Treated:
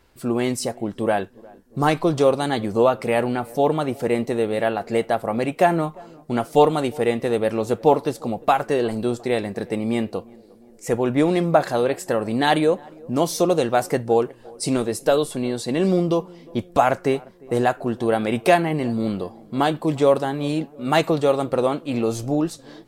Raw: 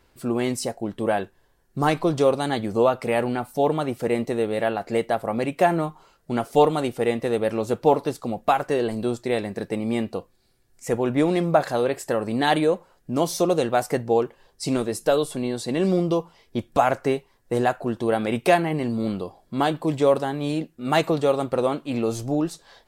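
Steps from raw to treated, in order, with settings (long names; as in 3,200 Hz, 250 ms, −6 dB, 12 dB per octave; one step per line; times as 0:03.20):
0:14.01–0:14.70: parametric band 9,200 Hz +8 dB 0.33 octaves
on a send: tape delay 354 ms, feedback 71%, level −23 dB, low-pass 1,100 Hz
on the sum: level +2 dB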